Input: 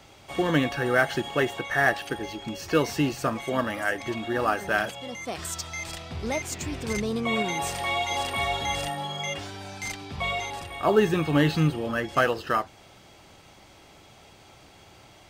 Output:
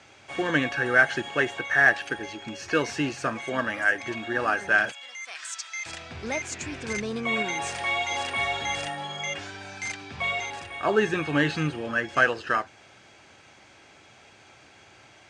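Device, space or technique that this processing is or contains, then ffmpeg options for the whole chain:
car door speaker: -filter_complex "[0:a]asettb=1/sr,asplit=3[a][b][c];[a]atrim=end=4.924[d];[b]atrim=start=4.92:end=5.86,asetpts=PTS-STARTPTS,afade=t=in:d=0.004:c=qsin,afade=t=out:st=0.936:d=0.004:c=qsin,highpass=1.4k[e];[c]atrim=start=5.856[f];[d][e]acrossfade=d=0.004:c1=hsin:c2=qsin[g];[g][f]acrossfade=d=0.004:c1=qsin:c2=hsin,highpass=94,equalizer=f=170:t=q:w=4:g=-5,equalizer=f=1.6k:t=q:w=4:g=9,equalizer=f=2.4k:t=q:w=4:g=6,equalizer=f=6.5k:t=q:w=4:g=3,lowpass=f=8.7k:w=0.5412,lowpass=f=8.7k:w=1.3066,volume=-2.5dB"

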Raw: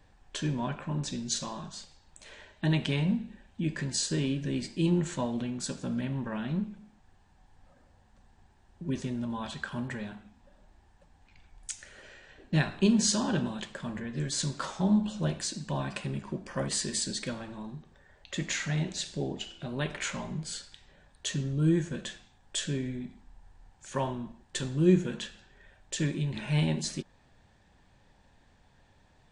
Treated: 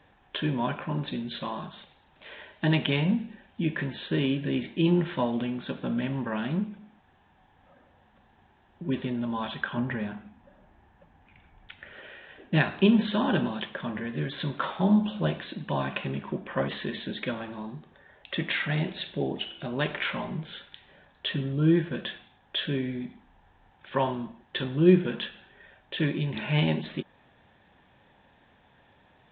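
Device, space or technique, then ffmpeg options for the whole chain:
Bluetooth headset: -filter_complex "[0:a]asettb=1/sr,asplit=3[a][b][c];[a]atrim=end=9.774[d];[b]atrim=start=9.77:end=11.93,asetpts=PTS-STARTPTS,afade=t=in:d=0.004:c=qsin,afade=t=out:st=2.156:d=0.004:c=qsin,bass=f=250:g=5,treble=f=4k:g=-14[e];[c]atrim=start=11.926[f];[d][e]acrossfade=d=0.004:c1=hsin:c2=qsin[g];[g][f]acrossfade=d=0.004:c1=qsin:c2=hsin,highpass=f=210:p=1,aresample=8000,aresample=44100,volume=6dB" -ar 16000 -c:a sbc -b:a 64k

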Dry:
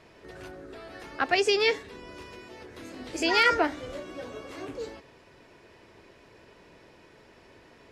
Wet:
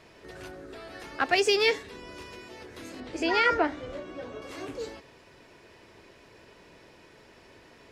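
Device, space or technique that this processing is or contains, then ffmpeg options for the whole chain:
exciter from parts: -filter_complex "[0:a]asplit=2[a][b];[b]highpass=f=3.5k:p=1,asoftclip=type=tanh:threshold=-35.5dB,volume=-5dB[c];[a][c]amix=inputs=2:normalize=0,asettb=1/sr,asplit=3[d][e][f];[d]atrim=end=3.004[g];[e]atrim=start=3:end=4.42,asetpts=PTS-STARTPTS,afade=t=in:d=0.004:c=qsin,afade=t=out:st=1.416:d=0.004:c=qsin,aemphasis=mode=reproduction:type=75kf[h];[f]atrim=start=4.416[i];[g][h]acrossfade=d=0.004:c1=hsin:c2=qsin[j];[j][i]acrossfade=d=0.004:c1=qsin:c2=hsin"

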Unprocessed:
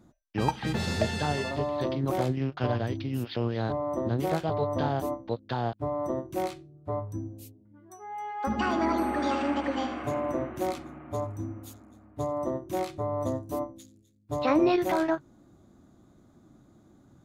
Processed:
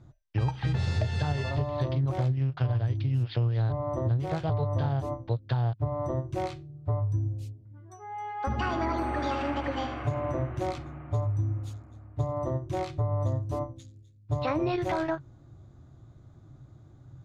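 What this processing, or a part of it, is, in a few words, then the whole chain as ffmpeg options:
jukebox: -af "lowpass=5.9k,lowshelf=f=160:t=q:w=3:g=8,acompressor=threshold=-24dB:ratio=6"

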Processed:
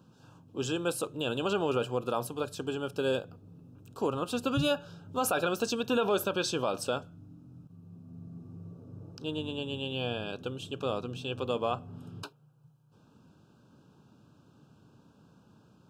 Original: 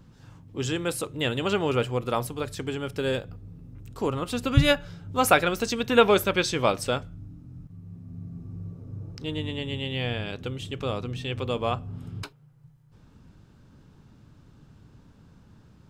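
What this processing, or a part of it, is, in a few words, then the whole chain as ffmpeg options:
PA system with an anti-feedback notch: -af "highpass=140,asuperstop=centerf=2000:order=12:qfactor=2.6,alimiter=limit=-16.5dB:level=0:latency=1:release=40,equalizer=f=660:w=0.63:g=3,volume=-4dB"

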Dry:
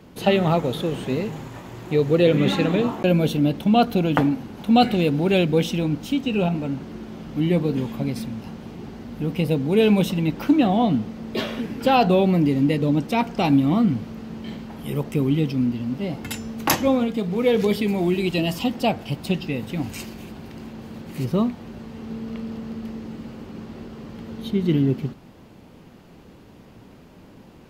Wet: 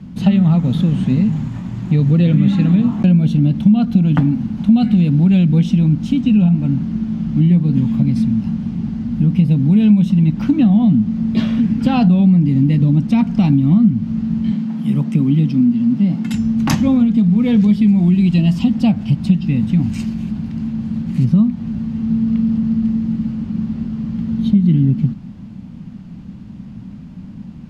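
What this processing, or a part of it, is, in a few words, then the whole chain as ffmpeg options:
jukebox: -filter_complex "[0:a]asettb=1/sr,asplit=3[a][b][c];[a]atrim=end=14.524[d];[b]atrim=start=14.52:end=16.34,asetpts=PTS-STARTPTS,afade=t=in:d=0.004:c=qsin,afade=t=out:st=1.816:d=0.004:c=qsin,highpass=f=160:w=0.5412,highpass=f=160:w=1.3066[e];[c]atrim=start=16.336[f];[d][e]acrossfade=d=0.004:c1=hsin:c2=qsin[g];[g][f]acrossfade=d=0.004:c1=qsin:c2=hsin,lowpass=7.8k,lowshelf=f=290:t=q:w=3:g=11.5,acompressor=threshold=-10dB:ratio=4"

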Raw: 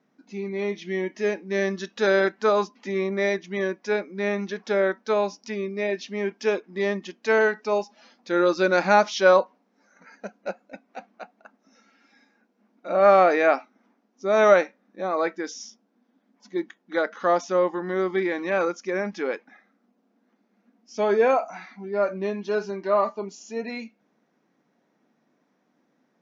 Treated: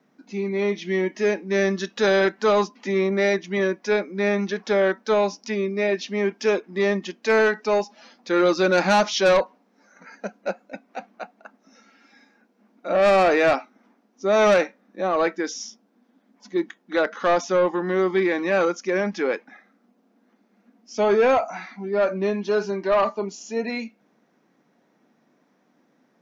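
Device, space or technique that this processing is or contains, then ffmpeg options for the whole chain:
one-band saturation: -filter_complex "[0:a]acrossover=split=220|3000[a][b][c];[b]asoftclip=type=tanh:threshold=-19dB[d];[a][d][c]amix=inputs=3:normalize=0,volume=5dB"

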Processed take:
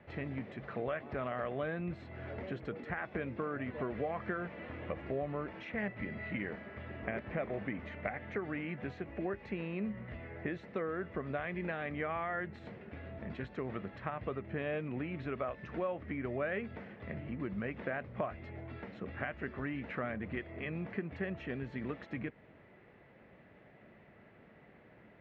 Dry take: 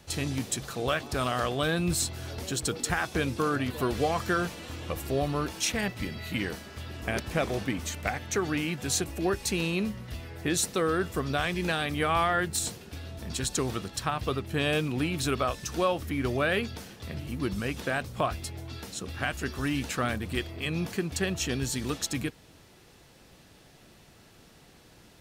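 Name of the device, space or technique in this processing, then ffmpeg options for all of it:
bass amplifier: -af "acompressor=threshold=-32dB:ratio=4,highpass=63,equalizer=f=74:t=q:w=4:g=-4,equalizer=f=210:t=q:w=4:g=5,equalizer=f=420:t=q:w=4:g=3,equalizer=f=600:t=q:w=4:g=7,equalizer=f=2k:t=q:w=4:g=8,lowpass=f=2.3k:w=0.5412,lowpass=f=2.3k:w=1.3066,volume=-5dB"

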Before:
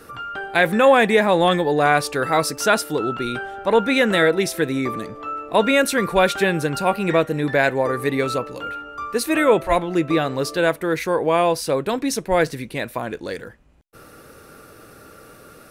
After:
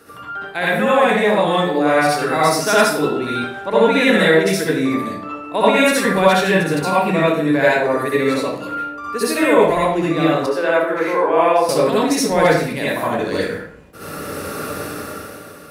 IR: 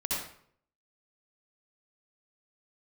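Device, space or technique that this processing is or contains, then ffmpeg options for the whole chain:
far laptop microphone: -filter_complex "[1:a]atrim=start_sample=2205[a];[0:a][a]afir=irnorm=-1:irlink=0,highpass=f=120:p=1,dynaudnorm=f=190:g=9:m=15dB,asettb=1/sr,asplit=3[b][c][d];[b]atrim=end=10.464[e];[c]atrim=start=10.46:end=11.69,asetpts=PTS-STARTPTS,afade=t=in:d=0.004:c=qsin,afade=t=out:st=1.226:d=0.004:c=qsin,acrossover=split=270 2500:gain=0.0891 1 0.224[f][g][h];[f][g][h]amix=inputs=3:normalize=0[i];[d]atrim=start=11.686[j];[e][i]acrossfade=d=0.004:c1=hsin:c2=qsin[k];[k][j]acrossfade=d=0.004:c1=qsin:c2=hsin,volume=-1dB"

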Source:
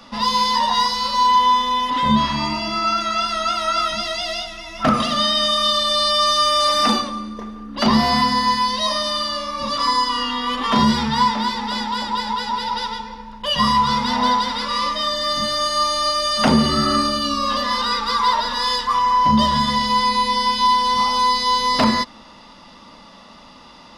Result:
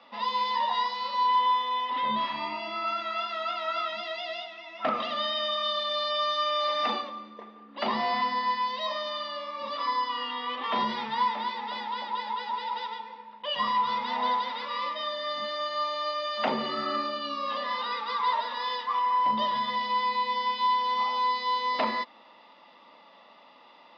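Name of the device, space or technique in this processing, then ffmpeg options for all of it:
phone earpiece: -filter_complex "[0:a]asettb=1/sr,asplit=3[a][b][c];[a]atrim=end=1.464[d];[b]atrim=start=1.46:end=1.92,asetpts=PTS-STARTPTS,afade=t=in:d=0.004:c=qsin,afade=t=out:st=0.456:d=0.004:c=qsin,highpass=290[e];[c]atrim=start=1.916[f];[d][e]acrossfade=d=0.004:c1=hsin:c2=qsin[g];[g][f]acrossfade=d=0.004:c1=qsin:c2=hsin,highpass=480,equalizer=f=1.1k:t=q:w=4:g=-3,equalizer=f=1.5k:t=q:w=4:g=-7,equalizer=f=3k:t=q:w=4:g=-3,lowpass=f=3.4k:w=0.5412,lowpass=f=3.4k:w=1.3066,volume=-6dB"

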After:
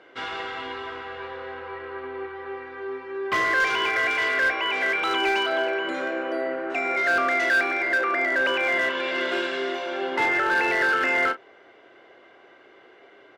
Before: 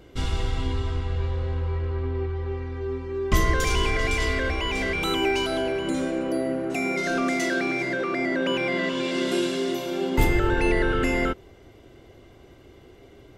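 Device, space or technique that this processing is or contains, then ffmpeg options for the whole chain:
megaphone: -filter_complex "[0:a]highpass=590,lowpass=2.7k,equalizer=f=1.6k:t=o:w=0.52:g=6,asoftclip=type=hard:threshold=-22dB,asplit=2[a][b];[b]adelay=33,volume=-12.5dB[c];[a][c]amix=inputs=2:normalize=0,volume=4.5dB"

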